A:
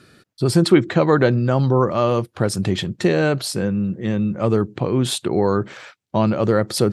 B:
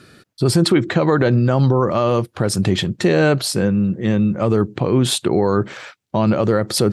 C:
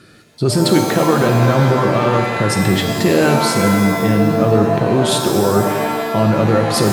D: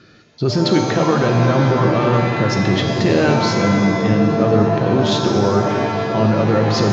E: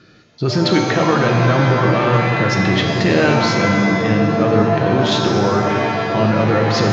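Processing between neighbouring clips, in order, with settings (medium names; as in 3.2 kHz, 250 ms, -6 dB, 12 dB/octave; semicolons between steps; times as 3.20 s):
peak limiter -10 dBFS, peak gain reduction 8 dB; trim +4 dB
pitch-shifted reverb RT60 1.6 s, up +7 st, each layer -2 dB, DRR 4.5 dB
steep low-pass 6.7 kHz 96 dB/octave; on a send: delay with an opening low-pass 417 ms, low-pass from 200 Hz, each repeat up 1 oct, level -6 dB; on the sum: trim -2 dB
dynamic bell 2 kHz, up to +6 dB, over -36 dBFS, Q 0.78; on a send at -10 dB: reverberation RT60 0.95 s, pre-delay 6 ms; on the sum: trim -1 dB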